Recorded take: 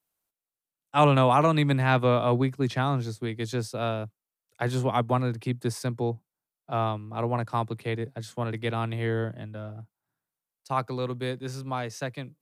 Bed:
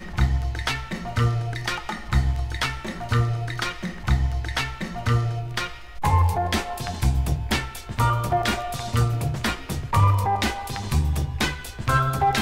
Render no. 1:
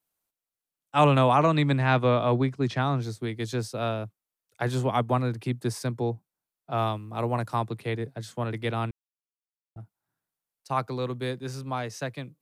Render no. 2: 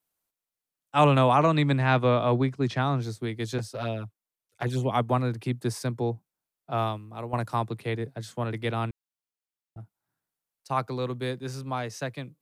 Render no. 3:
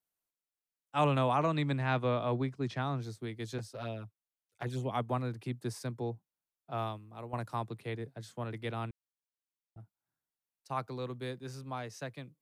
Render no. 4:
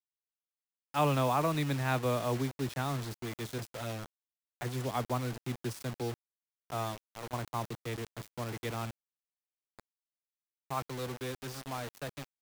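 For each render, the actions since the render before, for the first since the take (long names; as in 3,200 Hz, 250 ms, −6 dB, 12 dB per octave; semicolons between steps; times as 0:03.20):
0:01.31–0:03.02: low-pass filter 7,200 Hz; 0:06.77–0:07.54: high-shelf EQ 4,300 Hz → 7,100 Hz +10 dB; 0:08.91–0:09.76: silence
0:03.58–0:04.91: flanger swept by the level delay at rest 11.4 ms, full sweep at −23 dBFS; 0:06.75–0:07.33: fade out, to −10.5 dB
level −8.5 dB
bit reduction 7 bits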